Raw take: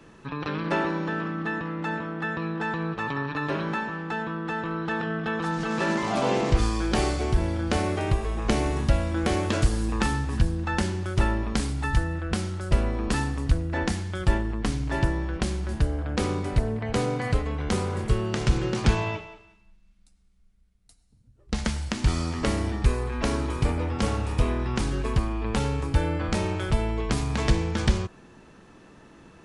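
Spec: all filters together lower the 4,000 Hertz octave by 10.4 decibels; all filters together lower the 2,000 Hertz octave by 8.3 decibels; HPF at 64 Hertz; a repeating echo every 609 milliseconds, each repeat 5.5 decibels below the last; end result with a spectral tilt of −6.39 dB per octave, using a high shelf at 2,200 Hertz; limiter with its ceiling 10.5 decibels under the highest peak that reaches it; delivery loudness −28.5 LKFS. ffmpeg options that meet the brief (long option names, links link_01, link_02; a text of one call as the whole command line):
ffmpeg -i in.wav -af "highpass=64,equalizer=frequency=2000:width_type=o:gain=-7,highshelf=frequency=2200:gain=-3.5,equalizer=frequency=4000:width_type=o:gain=-8,alimiter=limit=-20.5dB:level=0:latency=1,aecho=1:1:609|1218|1827|2436|3045|3654|4263:0.531|0.281|0.149|0.079|0.0419|0.0222|0.0118,volume=1.5dB" out.wav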